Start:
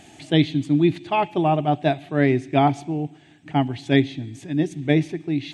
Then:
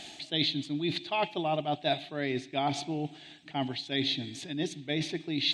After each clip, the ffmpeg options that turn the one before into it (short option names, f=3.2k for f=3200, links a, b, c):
-af "equalizer=f=3.7k:t=o:w=2.6:g=7,areverse,acompressor=threshold=-25dB:ratio=6,areverse,equalizer=f=100:t=o:w=0.67:g=-9,equalizer=f=630:t=o:w=0.67:g=4,equalizer=f=4k:t=o:w=0.67:g=11,volume=-4dB"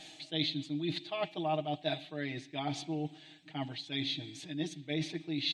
-af "aecho=1:1:6.4:0.95,volume=-8dB"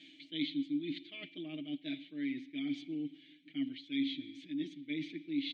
-filter_complex "[0:a]asplit=3[a][b][c];[a]bandpass=f=270:t=q:w=8,volume=0dB[d];[b]bandpass=f=2.29k:t=q:w=8,volume=-6dB[e];[c]bandpass=f=3.01k:t=q:w=8,volume=-9dB[f];[d][e][f]amix=inputs=3:normalize=0,volume=6.5dB"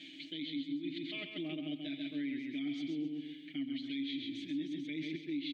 -filter_complex "[0:a]aecho=1:1:133|266|399|532:0.562|0.174|0.054|0.0168,asplit=2[a][b];[b]acompressor=threshold=-44dB:ratio=6,volume=-0.5dB[c];[a][c]amix=inputs=2:normalize=0,alimiter=level_in=6.5dB:limit=-24dB:level=0:latency=1:release=221,volume=-6.5dB"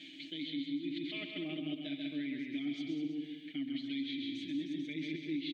-af "aecho=1:1:197:0.422"